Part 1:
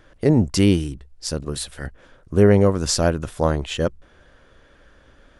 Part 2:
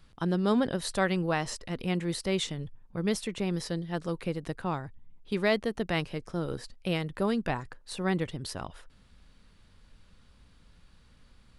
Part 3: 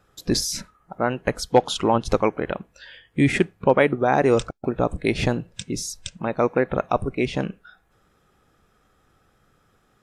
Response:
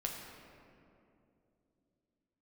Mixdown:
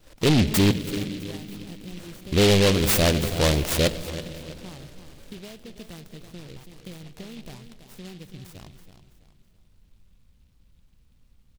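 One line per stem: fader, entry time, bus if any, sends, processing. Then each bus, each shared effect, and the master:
+2.5 dB, 0.00 s, muted 0.71–1.92 s, send -14 dB, echo send -16 dB, expander -46 dBFS
-11.0 dB, 0.00 s, send -14 dB, echo send -8.5 dB, compression 6:1, threshold -32 dBFS, peak gain reduction 11.5 dB; bass shelf 250 Hz +9.5 dB
-15.0 dB, 0.00 s, no send, echo send -8.5 dB, peak limiter -15.5 dBFS, peak gain reduction 10.5 dB; compression, threshold -31 dBFS, peak gain reduction 11 dB; full-wave rectifier; auto duck -11 dB, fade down 0.40 s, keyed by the first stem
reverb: on, RT60 2.8 s, pre-delay 8 ms
echo: feedback delay 329 ms, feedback 35%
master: saturation -14 dBFS, distortion -7 dB; delay time shaken by noise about 3 kHz, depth 0.16 ms

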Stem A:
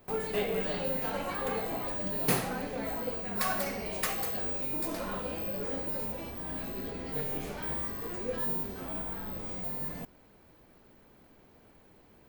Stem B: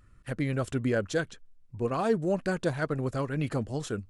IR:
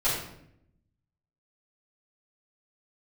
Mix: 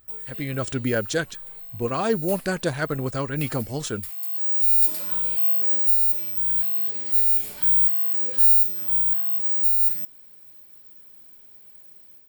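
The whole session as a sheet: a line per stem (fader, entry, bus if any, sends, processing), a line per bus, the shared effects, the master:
-3.5 dB, 0.00 s, no send, pre-emphasis filter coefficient 0.8; band-stop 6.2 kHz, Q 5.2; auto duck -18 dB, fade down 0.75 s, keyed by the second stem
-6.0 dB, 0.00 s, no send, none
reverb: none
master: treble shelf 2.2 kHz +8 dB; level rider gain up to 9 dB

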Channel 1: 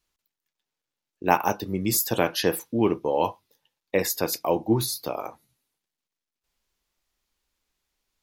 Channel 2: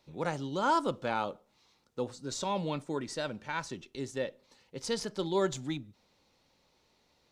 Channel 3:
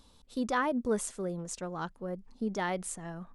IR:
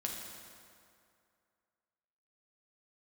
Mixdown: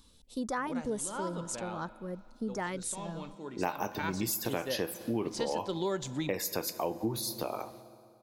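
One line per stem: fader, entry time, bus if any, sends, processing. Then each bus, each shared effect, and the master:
-4.0 dB, 2.35 s, send -12 dB, none
+3.0 dB, 0.50 s, send -21 dB, auto duck -17 dB, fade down 1.00 s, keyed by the third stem
-1.0 dB, 0.00 s, no send, treble shelf 7.6 kHz +6.5 dB; LFO notch saw up 1.5 Hz 600–4400 Hz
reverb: on, RT60 2.4 s, pre-delay 5 ms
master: compression 4:1, threshold -30 dBFS, peak gain reduction 12.5 dB

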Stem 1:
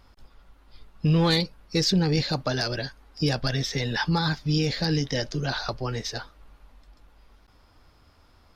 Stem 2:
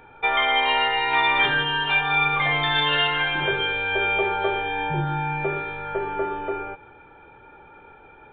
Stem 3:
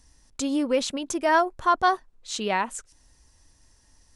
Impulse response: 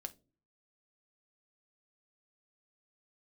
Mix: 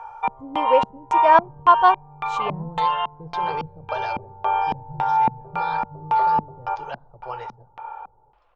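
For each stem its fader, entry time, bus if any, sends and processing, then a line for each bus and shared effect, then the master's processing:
-8.0 dB, 1.45 s, bus A, send -14 dB, bass shelf 170 Hz +11 dB
+1.5 dB, 0.00 s, bus A, send -9 dB, graphic EQ 250/500/1000/2000/4000 Hz -10/-5/+10/-11/-5 dB; auto duck -21 dB, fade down 0.45 s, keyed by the third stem
-2.0 dB, 0.00 s, no bus, no send, treble shelf 5.1 kHz +9 dB; upward expansion 1.5:1, over -29 dBFS
bus A: 0.0 dB, high-pass 530 Hz 12 dB/octave; peak limiter -24.5 dBFS, peak gain reduction 9 dB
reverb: on, pre-delay 5 ms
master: ten-band graphic EQ 125 Hz +7 dB, 250 Hz -9 dB, 500 Hz +9 dB, 1 kHz +9 dB, 2 kHz -5 dB, 4 kHz -5 dB, 8 kHz +4 dB; LFO low-pass square 1.8 Hz 210–2800 Hz

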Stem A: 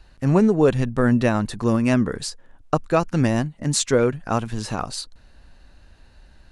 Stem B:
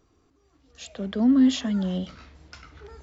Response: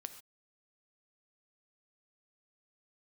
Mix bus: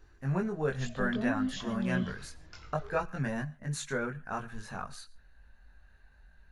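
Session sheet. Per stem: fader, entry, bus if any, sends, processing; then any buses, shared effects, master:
-12.5 dB, 0.00 s, send -3 dB, graphic EQ with 31 bands 100 Hz -10 dB, 315 Hz -11 dB, 500 Hz -4 dB, 1.6 kHz +10 dB, 3.15 kHz -5 dB, 5 kHz -10 dB, 8 kHz -8 dB
-0.5 dB, 0.00 s, send -4 dB, compression 3:1, threshold -27 dBFS, peak gain reduction 9.5 dB; auto duck -7 dB, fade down 0.20 s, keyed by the first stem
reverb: on, pre-delay 3 ms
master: chorus voices 6, 0.7 Hz, delay 21 ms, depth 1.5 ms

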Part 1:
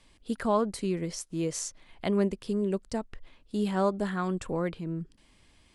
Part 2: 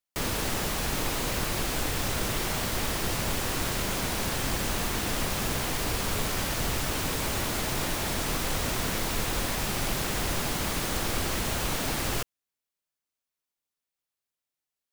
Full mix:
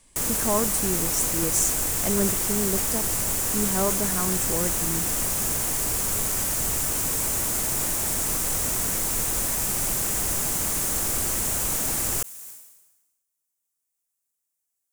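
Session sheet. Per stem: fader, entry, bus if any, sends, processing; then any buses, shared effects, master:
+0.5 dB, 0.00 s, no send, none
-2.0 dB, 0.00 s, no send, none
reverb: none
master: resonant high shelf 5.6 kHz +11 dB, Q 1.5; decay stretcher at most 53 dB/s

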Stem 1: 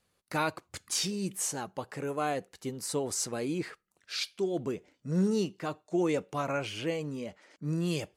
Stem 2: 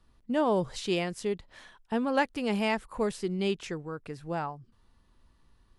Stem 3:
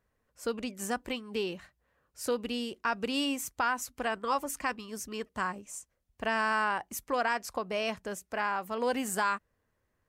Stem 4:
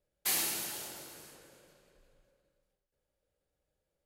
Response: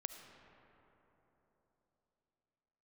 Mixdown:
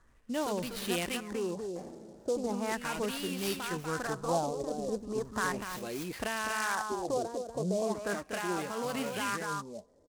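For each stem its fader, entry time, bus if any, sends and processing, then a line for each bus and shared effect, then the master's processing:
-6.0 dB, 2.50 s, no send, no echo send, flange 0.53 Hz, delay 3.1 ms, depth 6 ms, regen +47%
-4.0 dB, 0.00 s, muted 1.06–2.35 s, no send, echo send -19.5 dB, gain riding 0.5 s
+0.5 dB, 0.00 s, send -18.5 dB, echo send -5.5 dB, peak limiter -29.5 dBFS, peak gain reduction 12 dB
-5.5 dB, 1.50 s, no send, echo send -13.5 dB, peaking EQ 210 Hz +12.5 dB 0.45 oct; auto duck -12 dB, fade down 0.60 s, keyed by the second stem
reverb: on, RT60 3.8 s, pre-delay 30 ms
echo: delay 243 ms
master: gain riding 0.5 s; LFO low-pass sine 0.37 Hz 490–4900 Hz; delay time shaken by noise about 5.9 kHz, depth 0.037 ms

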